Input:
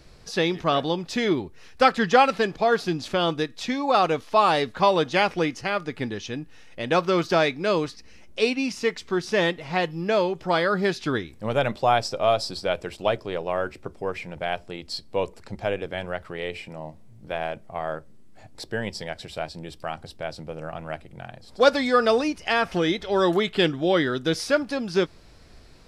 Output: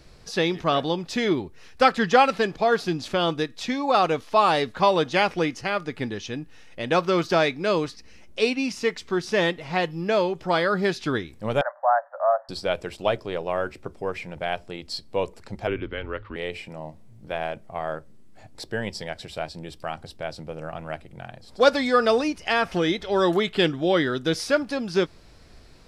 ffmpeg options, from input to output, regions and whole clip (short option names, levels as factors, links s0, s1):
-filter_complex "[0:a]asettb=1/sr,asplit=3[s0][s1][s2];[s0]atrim=end=11.614[s3];[s1]atrim=start=11.61:end=12.49,asetpts=PTS-STARTPTS,afade=t=in:d=0.004:c=qsin,afade=t=out:st=0.876:d=0.004:c=qsin,acrusher=bits=6:mode=log:mix=0:aa=0.000001,asuperpass=centerf=1000:order=20:qfactor=0.81[s4];[s2]atrim=start=12.486[s5];[s3][s4]acrossfade=d=0.004:c1=hsin:c2=qsin[s6];[s6][s5]acrossfade=d=0.004:c1=qsin:c2=hsin,asettb=1/sr,asplit=3[s7][s8][s9];[s7]atrim=end=15.674[s10];[s8]atrim=start=15.67:end=16.36,asetpts=PTS-STARTPTS,afade=t=in:d=0.004:c=qsin,afade=t=out:st=0.686:d=0.004:c=qsin,lowpass=f=3800:w=0.5412,lowpass=f=3800:w=1.3066,equalizer=f=810:t=o:w=0.26:g=-13,afreqshift=-110[s11];[s9]atrim=start=16.356[s12];[s10][s11]acrossfade=d=0.004:c1=hsin:c2=qsin[s13];[s13][s12]acrossfade=d=0.004:c1=qsin:c2=hsin"